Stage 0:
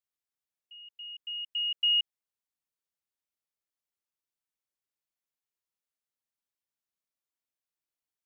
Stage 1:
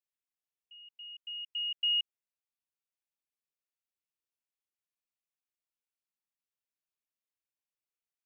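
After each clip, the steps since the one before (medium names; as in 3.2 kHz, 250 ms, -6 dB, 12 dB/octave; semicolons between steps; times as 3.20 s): peaking EQ 2.6 kHz +5.5 dB 0.41 oct; trim -7.5 dB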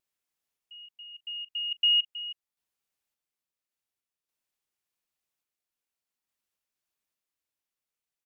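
random-step tremolo 3.5 Hz; delay 319 ms -15 dB; vibrato 0.52 Hz 6 cents; trim +8 dB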